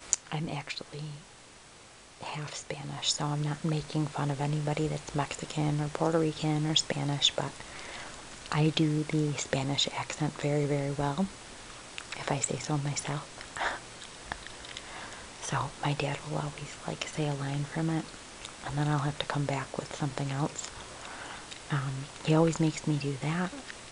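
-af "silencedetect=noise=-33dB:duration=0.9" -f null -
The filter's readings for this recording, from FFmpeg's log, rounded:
silence_start: 1.07
silence_end: 2.23 | silence_duration: 1.15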